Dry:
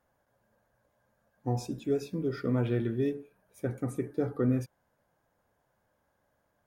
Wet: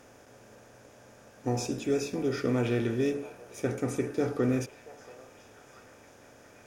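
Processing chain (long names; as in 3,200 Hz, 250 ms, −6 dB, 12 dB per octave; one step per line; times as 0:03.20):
compressor on every frequency bin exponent 0.6
graphic EQ with 15 bands 160 Hz −7 dB, 2,500 Hz +7 dB, 6,300 Hz +9 dB
on a send: echo through a band-pass that steps 680 ms, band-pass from 770 Hz, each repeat 0.7 octaves, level −12 dB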